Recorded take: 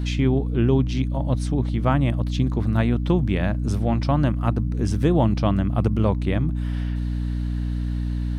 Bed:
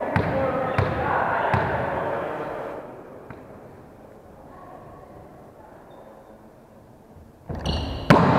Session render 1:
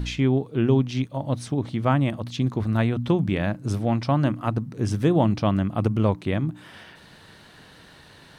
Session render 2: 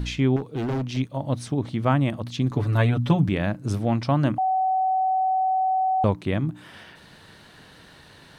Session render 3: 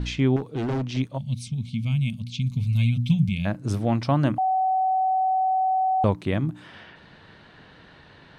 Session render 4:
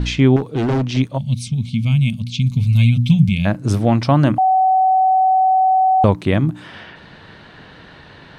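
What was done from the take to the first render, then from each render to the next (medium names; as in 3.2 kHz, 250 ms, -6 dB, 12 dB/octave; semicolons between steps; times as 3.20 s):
de-hum 60 Hz, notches 5
0.36–0.97 s: hard clipper -23.5 dBFS; 2.50–3.29 s: comb 7 ms, depth 92%; 4.38–6.04 s: bleep 755 Hz -19 dBFS
level-controlled noise filter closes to 2.9 kHz, open at -21.5 dBFS; 1.18–3.45 s: time-frequency box 240–2100 Hz -27 dB
trim +8.5 dB; peak limiter -3 dBFS, peak gain reduction 2 dB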